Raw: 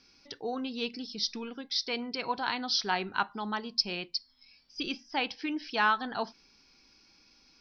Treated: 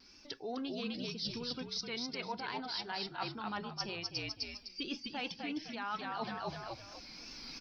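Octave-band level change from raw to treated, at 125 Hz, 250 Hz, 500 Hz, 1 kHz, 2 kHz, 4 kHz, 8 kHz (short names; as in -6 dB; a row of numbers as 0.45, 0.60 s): +2.0 dB, -4.5 dB, -5.5 dB, -8.5 dB, -9.5 dB, -6.5 dB, n/a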